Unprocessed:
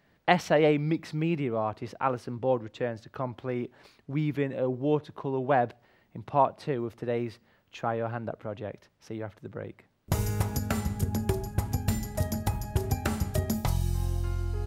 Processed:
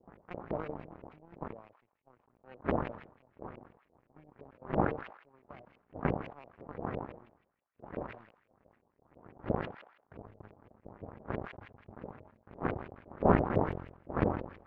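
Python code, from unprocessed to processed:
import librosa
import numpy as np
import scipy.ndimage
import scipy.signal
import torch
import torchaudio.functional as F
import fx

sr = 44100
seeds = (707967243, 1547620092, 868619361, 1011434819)

p1 = scipy.signal.medfilt(x, 41)
p2 = fx.dmg_wind(p1, sr, seeds[0], corner_hz=340.0, level_db=-25.0)
p3 = scipy.signal.sosfilt(scipy.signal.butter(2, 65.0, 'highpass', fs=sr, output='sos'), p2)
p4 = 10.0 ** (-16.0 / 20.0) * np.tanh(p3 / 10.0 ** (-16.0 / 20.0))
p5 = p3 + (p4 * 10.0 ** (-6.0 / 20.0))
p6 = fx.power_curve(p5, sr, exponent=3.0)
p7 = fx.filter_lfo_lowpass(p6, sr, shape='saw_up', hz=5.9, low_hz=470.0, high_hz=2700.0, q=2.7)
p8 = fx.echo_wet_highpass(p7, sr, ms=162, feedback_pct=61, hz=2400.0, wet_db=-21.0)
p9 = fx.sustainer(p8, sr, db_per_s=87.0)
y = p9 * 10.0 ** (-6.0 / 20.0)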